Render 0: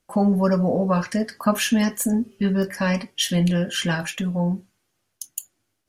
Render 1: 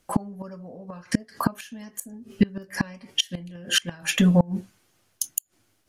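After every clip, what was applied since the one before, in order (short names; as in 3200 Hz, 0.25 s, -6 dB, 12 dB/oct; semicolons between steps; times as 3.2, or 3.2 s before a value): flipped gate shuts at -15 dBFS, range -28 dB; gain +7.5 dB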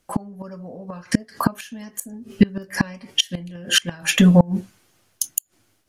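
AGC; gain -1 dB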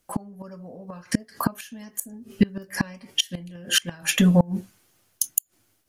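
high shelf 11000 Hz +10.5 dB; gain -4.5 dB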